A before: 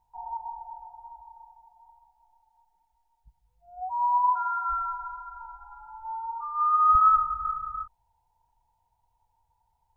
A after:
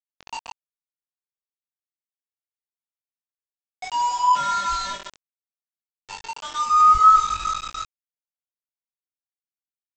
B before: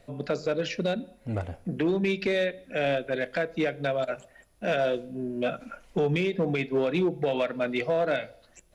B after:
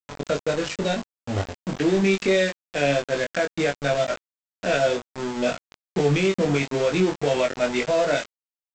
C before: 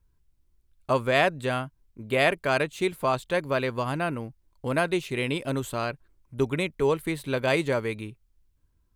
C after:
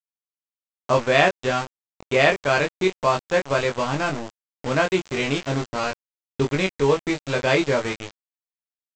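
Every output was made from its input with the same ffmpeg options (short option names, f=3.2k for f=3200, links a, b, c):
-filter_complex "[0:a]aresample=16000,aeval=exprs='val(0)*gte(abs(val(0)),0.0299)':c=same,aresample=44100,asplit=2[a][b];[b]adelay=21,volume=-3dB[c];[a][c]amix=inputs=2:normalize=0,volume=3dB"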